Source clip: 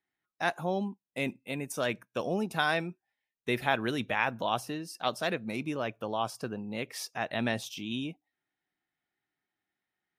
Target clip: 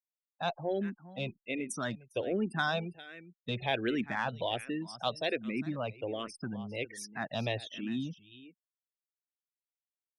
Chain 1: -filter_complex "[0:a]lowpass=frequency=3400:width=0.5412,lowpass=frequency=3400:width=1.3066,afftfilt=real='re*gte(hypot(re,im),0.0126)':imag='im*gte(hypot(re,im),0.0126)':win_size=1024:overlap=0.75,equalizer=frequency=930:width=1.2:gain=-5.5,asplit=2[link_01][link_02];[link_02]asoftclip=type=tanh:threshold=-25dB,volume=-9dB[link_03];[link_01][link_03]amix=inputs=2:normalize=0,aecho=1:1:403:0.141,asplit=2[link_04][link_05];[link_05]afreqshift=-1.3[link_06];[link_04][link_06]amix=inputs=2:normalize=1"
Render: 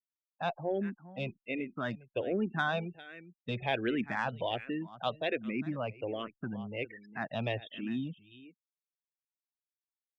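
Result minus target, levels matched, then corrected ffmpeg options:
4,000 Hz band −3.5 dB
-filter_complex "[0:a]afftfilt=real='re*gte(hypot(re,im),0.0126)':imag='im*gte(hypot(re,im),0.0126)':win_size=1024:overlap=0.75,equalizer=frequency=930:width=1.2:gain=-5.5,asplit=2[link_01][link_02];[link_02]asoftclip=type=tanh:threshold=-25dB,volume=-9dB[link_03];[link_01][link_03]amix=inputs=2:normalize=0,aecho=1:1:403:0.141,asplit=2[link_04][link_05];[link_05]afreqshift=-1.3[link_06];[link_04][link_06]amix=inputs=2:normalize=1"

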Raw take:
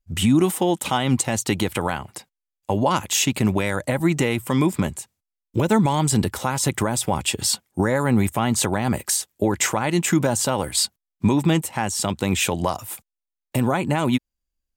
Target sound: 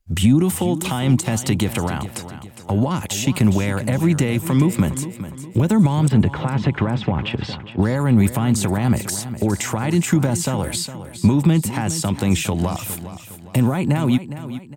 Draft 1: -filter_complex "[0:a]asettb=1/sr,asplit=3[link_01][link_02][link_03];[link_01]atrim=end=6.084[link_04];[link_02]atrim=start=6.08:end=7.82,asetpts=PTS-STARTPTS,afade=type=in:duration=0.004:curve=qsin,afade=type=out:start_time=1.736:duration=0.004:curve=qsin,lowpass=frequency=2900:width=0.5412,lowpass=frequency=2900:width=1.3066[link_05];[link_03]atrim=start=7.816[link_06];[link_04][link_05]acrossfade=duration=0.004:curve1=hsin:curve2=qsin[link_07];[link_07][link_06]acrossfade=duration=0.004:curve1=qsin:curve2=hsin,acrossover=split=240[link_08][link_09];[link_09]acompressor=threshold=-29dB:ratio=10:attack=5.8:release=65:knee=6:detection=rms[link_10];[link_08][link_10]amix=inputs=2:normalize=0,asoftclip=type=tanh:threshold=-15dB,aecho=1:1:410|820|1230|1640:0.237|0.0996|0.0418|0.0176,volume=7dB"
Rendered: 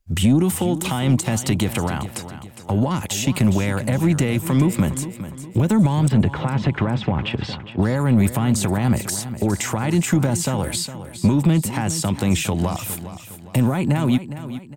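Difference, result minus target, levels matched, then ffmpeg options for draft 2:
soft clipping: distortion +10 dB
-filter_complex "[0:a]asettb=1/sr,asplit=3[link_01][link_02][link_03];[link_01]atrim=end=6.084[link_04];[link_02]atrim=start=6.08:end=7.82,asetpts=PTS-STARTPTS,afade=type=in:duration=0.004:curve=qsin,afade=type=out:start_time=1.736:duration=0.004:curve=qsin,lowpass=frequency=2900:width=0.5412,lowpass=frequency=2900:width=1.3066[link_05];[link_03]atrim=start=7.816[link_06];[link_04][link_05]acrossfade=duration=0.004:curve1=hsin:curve2=qsin[link_07];[link_07][link_06]acrossfade=duration=0.004:curve1=qsin:curve2=hsin,acrossover=split=240[link_08][link_09];[link_09]acompressor=threshold=-29dB:ratio=10:attack=5.8:release=65:knee=6:detection=rms[link_10];[link_08][link_10]amix=inputs=2:normalize=0,asoftclip=type=tanh:threshold=-8.5dB,aecho=1:1:410|820|1230|1640:0.237|0.0996|0.0418|0.0176,volume=7dB"

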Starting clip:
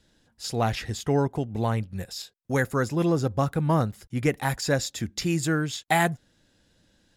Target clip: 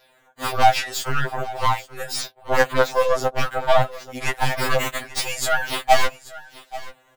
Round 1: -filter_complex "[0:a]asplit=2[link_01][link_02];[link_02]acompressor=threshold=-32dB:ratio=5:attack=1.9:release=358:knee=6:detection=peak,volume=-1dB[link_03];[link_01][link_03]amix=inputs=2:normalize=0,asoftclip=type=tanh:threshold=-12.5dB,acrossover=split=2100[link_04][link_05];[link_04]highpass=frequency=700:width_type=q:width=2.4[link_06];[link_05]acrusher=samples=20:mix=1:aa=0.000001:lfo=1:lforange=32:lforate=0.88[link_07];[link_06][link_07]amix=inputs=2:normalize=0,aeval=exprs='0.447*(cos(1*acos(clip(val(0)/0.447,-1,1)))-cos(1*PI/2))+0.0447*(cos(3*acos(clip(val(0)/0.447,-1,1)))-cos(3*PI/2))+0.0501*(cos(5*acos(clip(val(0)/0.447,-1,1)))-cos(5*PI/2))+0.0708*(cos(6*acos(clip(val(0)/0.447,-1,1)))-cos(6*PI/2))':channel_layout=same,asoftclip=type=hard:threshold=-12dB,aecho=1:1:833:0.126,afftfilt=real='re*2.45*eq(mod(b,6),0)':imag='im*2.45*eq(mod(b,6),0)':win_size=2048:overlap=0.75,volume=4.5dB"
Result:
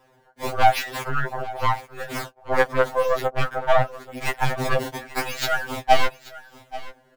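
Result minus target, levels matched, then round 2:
sample-and-hold swept by an LFO: distortion +16 dB; soft clipping: distortion +14 dB; downward compressor: peak gain reduction +6 dB
-filter_complex "[0:a]asplit=2[link_01][link_02];[link_02]acompressor=threshold=-24.5dB:ratio=5:attack=1.9:release=358:knee=6:detection=peak,volume=-1dB[link_03];[link_01][link_03]amix=inputs=2:normalize=0,asoftclip=type=tanh:threshold=-3.5dB,acrossover=split=2100[link_04][link_05];[link_04]highpass=frequency=700:width_type=q:width=2.4[link_06];[link_05]acrusher=samples=5:mix=1:aa=0.000001:lfo=1:lforange=8:lforate=0.88[link_07];[link_06][link_07]amix=inputs=2:normalize=0,aeval=exprs='0.447*(cos(1*acos(clip(val(0)/0.447,-1,1)))-cos(1*PI/2))+0.0447*(cos(3*acos(clip(val(0)/0.447,-1,1)))-cos(3*PI/2))+0.0501*(cos(5*acos(clip(val(0)/0.447,-1,1)))-cos(5*PI/2))+0.0708*(cos(6*acos(clip(val(0)/0.447,-1,1)))-cos(6*PI/2))':channel_layout=same,asoftclip=type=hard:threshold=-12dB,aecho=1:1:833:0.126,afftfilt=real='re*2.45*eq(mod(b,6),0)':imag='im*2.45*eq(mod(b,6),0)':win_size=2048:overlap=0.75,volume=4.5dB"

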